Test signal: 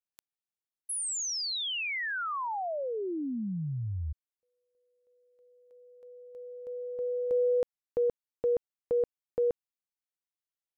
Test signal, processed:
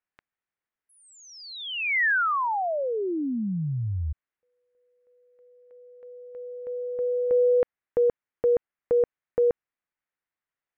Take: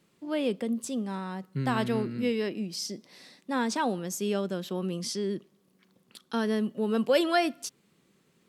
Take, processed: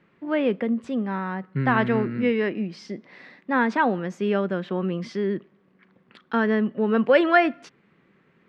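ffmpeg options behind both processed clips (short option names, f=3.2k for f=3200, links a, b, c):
-af "lowpass=f=1.9k:t=q:w=1.9,volume=5.5dB"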